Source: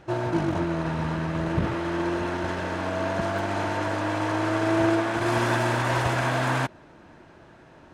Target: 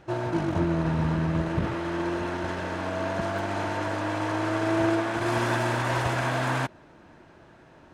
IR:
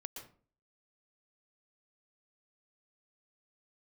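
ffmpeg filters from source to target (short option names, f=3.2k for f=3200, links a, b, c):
-filter_complex "[0:a]asettb=1/sr,asplit=3[a][b][c];[a]atrim=end=0.564[d];[b]atrim=start=0.56:end=1.42,asetpts=PTS-STARTPTS,afade=t=in:d=0.004:c=qsin,afade=t=out:st=0.856:d=0.004:c=qsin,lowshelf=f=340:g=6.5[e];[c]atrim=start=1.416[f];[d][e]acrossfade=d=0.004:c1=hsin:c2=qsin[g];[g][f]acrossfade=d=0.004:c1=qsin:c2=hsin,volume=-2dB"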